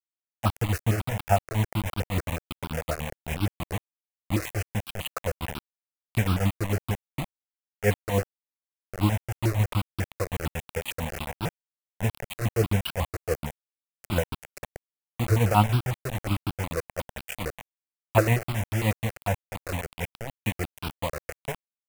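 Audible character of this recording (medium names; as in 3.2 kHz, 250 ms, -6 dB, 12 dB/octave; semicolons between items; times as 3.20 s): tremolo triangle 7 Hz, depth 80%; a quantiser's noise floor 6-bit, dither none; notches that jump at a steady rate 11 Hz 880–1900 Hz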